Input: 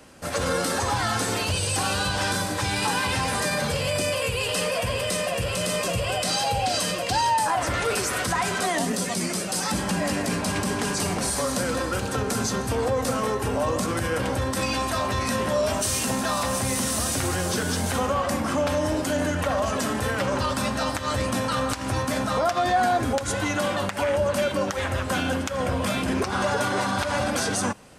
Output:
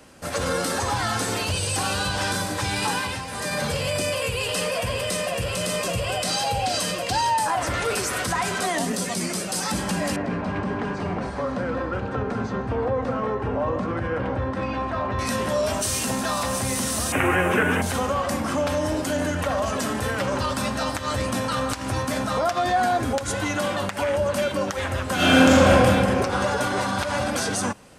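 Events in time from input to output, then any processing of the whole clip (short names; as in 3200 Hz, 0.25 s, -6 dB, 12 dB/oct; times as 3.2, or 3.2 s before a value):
2.92–3.61 dip -9 dB, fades 0.34 s
10.16–15.19 LPF 1800 Hz
17.12–17.82 EQ curve 110 Hz 0 dB, 370 Hz +7 dB, 620 Hz +6 dB, 2600 Hz +12 dB, 4400 Hz -22 dB, 7000 Hz -12 dB, 14000 Hz -4 dB
25.15–25.7 reverb throw, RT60 2.6 s, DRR -12 dB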